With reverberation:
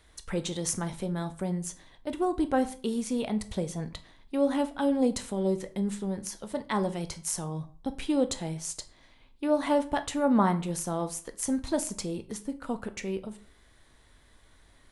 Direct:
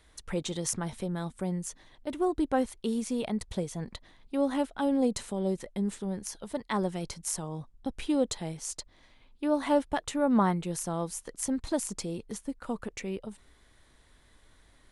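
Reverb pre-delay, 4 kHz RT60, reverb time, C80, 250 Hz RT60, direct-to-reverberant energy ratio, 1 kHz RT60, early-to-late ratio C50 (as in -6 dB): 11 ms, 0.35 s, 0.45 s, 20.5 dB, 0.45 s, 9.5 dB, 0.45 s, 16.0 dB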